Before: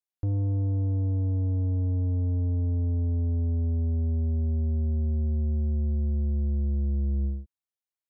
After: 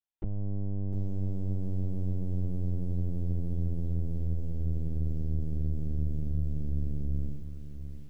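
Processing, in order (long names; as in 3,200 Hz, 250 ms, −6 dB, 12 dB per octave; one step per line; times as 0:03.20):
mains-hum notches 60/120/180/240/300/360 Hz
linear-prediction vocoder at 8 kHz pitch kept
feedback echo at a low word length 704 ms, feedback 35%, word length 9 bits, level −10 dB
level −4.5 dB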